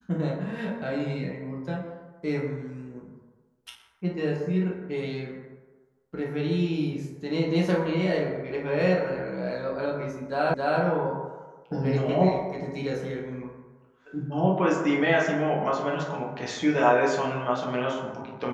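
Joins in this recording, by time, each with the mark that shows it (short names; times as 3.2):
10.54 repeat of the last 0.27 s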